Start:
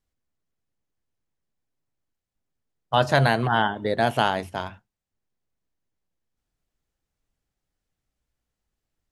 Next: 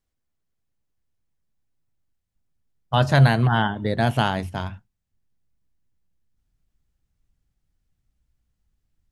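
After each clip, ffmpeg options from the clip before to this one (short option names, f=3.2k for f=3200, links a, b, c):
-af "asubboost=boost=3.5:cutoff=230"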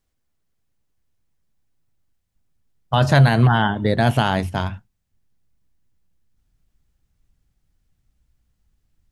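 -af "alimiter=limit=-11dB:level=0:latency=1:release=32,volume=5.5dB"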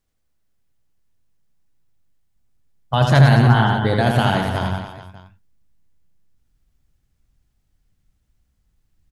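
-af "aecho=1:1:80|176|291.2|429.4|595.3:0.631|0.398|0.251|0.158|0.1,volume=-1dB"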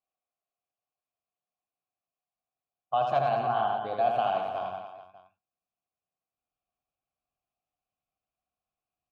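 -filter_complex "[0:a]asplit=3[a][b][c];[a]bandpass=f=730:t=q:w=8,volume=0dB[d];[b]bandpass=f=1.09k:t=q:w=8,volume=-6dB[e];[c]bandpass=f=2.44k:t=q:w=8,volume=-9dB[f];[d][e][f]amix=inputs=3:normalize=0"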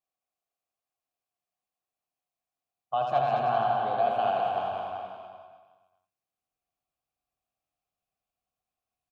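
-af "aecho=1:1:210|388.5|540.2|669.2|778.8:0.631|0.398|0.251|0.158|0.1,volume=-1.5dB"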